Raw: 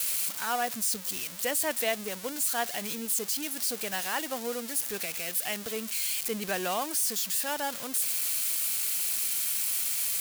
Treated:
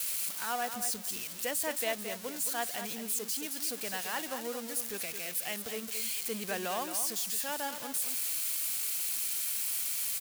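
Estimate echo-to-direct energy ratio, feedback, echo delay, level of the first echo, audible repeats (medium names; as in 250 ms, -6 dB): -9.0 dB, 17%, 219 ms, -9.0 dB, 2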